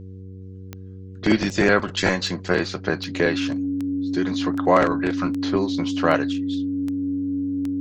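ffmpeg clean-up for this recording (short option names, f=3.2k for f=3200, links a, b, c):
-af "adeclick=t=4,bandreject=f=94.6:t=h:w=4,bandreject=f=189.2:t=h:w=4,bandreject=f=283.8:t=h:w=4,bandreject=f=378.4:t=h:w=4,bandreject=f=473:t=h:w=4,bandreject=f=280:w=30"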